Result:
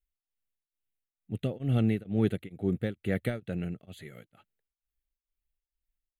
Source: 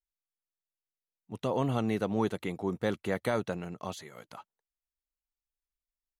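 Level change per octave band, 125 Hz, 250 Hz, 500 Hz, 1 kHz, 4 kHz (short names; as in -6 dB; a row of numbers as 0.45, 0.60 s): +6.0, +2.5, -2.5, -11.5, -3.5 dB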